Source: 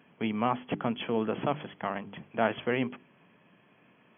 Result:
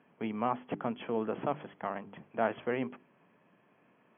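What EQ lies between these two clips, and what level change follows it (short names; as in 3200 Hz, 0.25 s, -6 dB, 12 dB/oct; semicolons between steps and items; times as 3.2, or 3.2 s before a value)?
LPF 1500 Hz 6 dB/oct; air absorption 190 m; low shelf 240 Hz -9 dB; 0.0 dB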